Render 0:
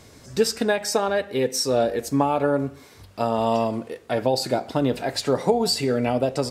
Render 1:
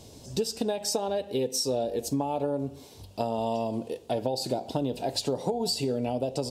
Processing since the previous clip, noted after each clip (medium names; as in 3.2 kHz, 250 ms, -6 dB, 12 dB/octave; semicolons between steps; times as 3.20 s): high-order bell 1.6 kHz -13.5 dB 1.2 oct; compression, threshold -25 dBFS, peak gain reduction 11 dB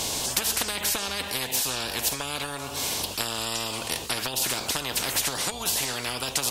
spectrum-flattening compressor 10:1; trim +7 dB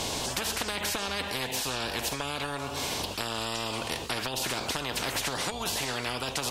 low-pass 3.2 kHz 6 dB/octave; in parallel at 0 dB: peak limiter -21.5 dBFS, peak gain reduction 9 dB; on the sum: trim -5 dB